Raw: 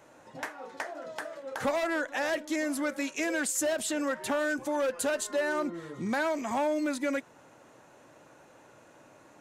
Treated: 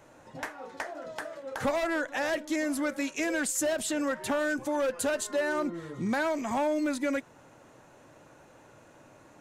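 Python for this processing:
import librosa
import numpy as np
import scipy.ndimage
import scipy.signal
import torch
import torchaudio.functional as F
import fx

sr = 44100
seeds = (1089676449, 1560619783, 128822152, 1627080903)

y = fx.low_shelf(x, sr, hz=110.0, db=11.0)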